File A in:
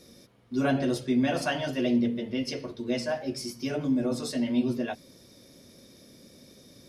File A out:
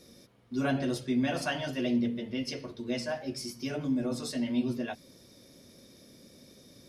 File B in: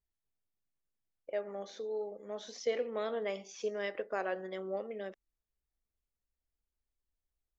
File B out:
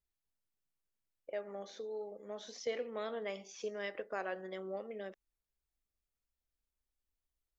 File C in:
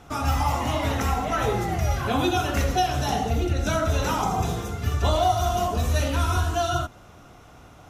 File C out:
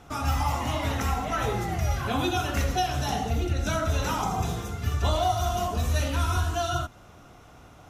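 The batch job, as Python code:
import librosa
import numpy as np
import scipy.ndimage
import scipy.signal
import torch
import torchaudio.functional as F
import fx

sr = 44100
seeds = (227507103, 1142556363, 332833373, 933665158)

y = fx.dynamic_eq(x, sr, hz=460.0, q=0.79, threshold_db=-39.0, ratio=4.0, max_db=-3)
y = y * librosa.db_to_amplitude(-2.0)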